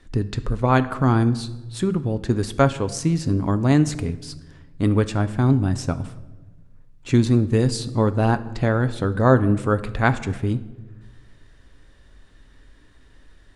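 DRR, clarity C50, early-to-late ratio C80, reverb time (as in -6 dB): 11.0 dB, 15.5 dB, 17.5 dB, 1.2 s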